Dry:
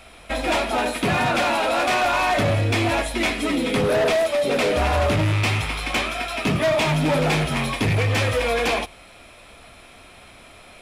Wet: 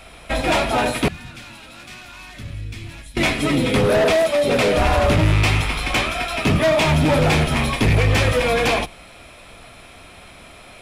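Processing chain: octaver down 1 oct, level -3 dB; 1.08–3.17 passive tone stack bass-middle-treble 6-0-2; gain +3 dB

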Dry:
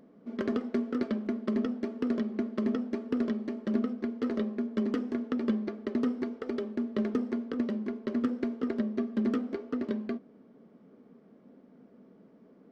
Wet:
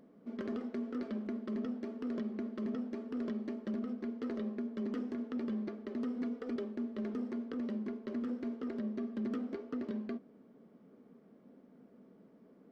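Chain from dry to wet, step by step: 6.16–6.56 comb 4.1 ms, depth 69%; limiter -26.5 dBFS, peak gain reduction 10.5 dB; gain -3.5 dB

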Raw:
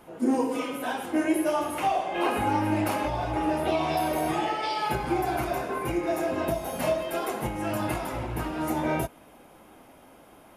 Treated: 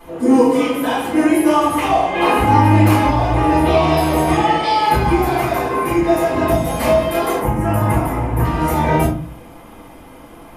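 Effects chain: 5.23–5.98 HPF 190 Hz 6 dB/oct; 7.38–8.45 bell 4100 Hz -13.5 dB 1.3 oct; reverb RT60 0.45 s, pre-delay 3 ms, DRR -7.5 dB; gain +1.5 dB

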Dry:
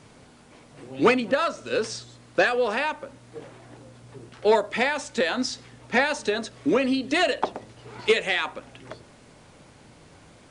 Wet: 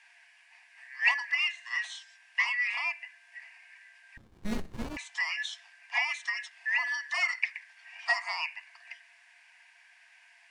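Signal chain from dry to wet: four-band scrambler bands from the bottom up 2143; rippled Chebyshev high-pass 670 Hz, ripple 9 dB; 4.17–4.97 running maximum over 65 samples; gain -3 dB

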